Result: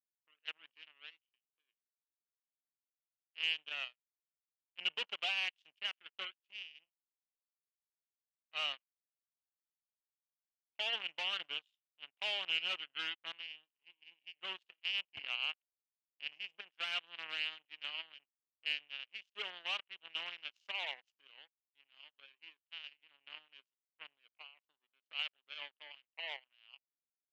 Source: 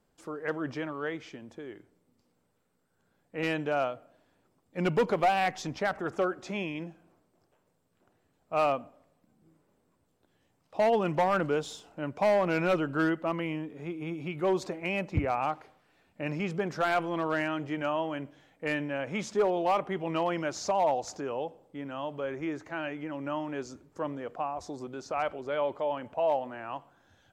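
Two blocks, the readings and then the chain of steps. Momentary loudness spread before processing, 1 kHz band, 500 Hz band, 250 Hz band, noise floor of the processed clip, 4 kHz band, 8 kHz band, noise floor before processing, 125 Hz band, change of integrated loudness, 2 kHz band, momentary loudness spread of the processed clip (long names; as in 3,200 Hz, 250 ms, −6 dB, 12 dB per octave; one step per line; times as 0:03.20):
14 LU, −21.5 dB, −28.0 dB, −37.0 dB, below −85 dBFS, +6.5 dB, −16.5 dB, −73 dBFS, below −35 dB, −9.0 dB, −5.5 dB, 20 LU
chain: power curve on the samples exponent 3
resonant band-pass 2,900 Hz, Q 8.6
level +10.5 dB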